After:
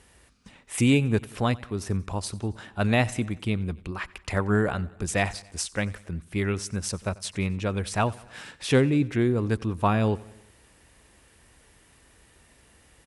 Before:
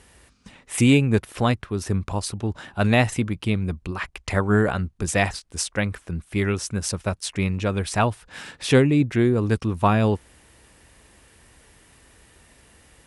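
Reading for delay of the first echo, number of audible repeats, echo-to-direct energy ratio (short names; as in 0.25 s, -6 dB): 91 ms, 3, -20.0 dB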